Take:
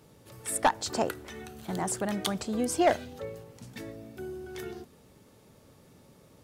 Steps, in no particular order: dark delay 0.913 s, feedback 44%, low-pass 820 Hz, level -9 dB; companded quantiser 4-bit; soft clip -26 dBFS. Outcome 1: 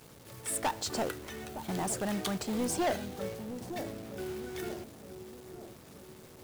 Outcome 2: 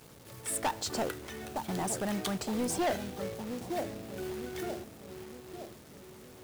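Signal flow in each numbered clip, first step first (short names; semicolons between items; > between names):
companded quantiser > soft clip > dark delay; dark delay > companded quantiser > soft clip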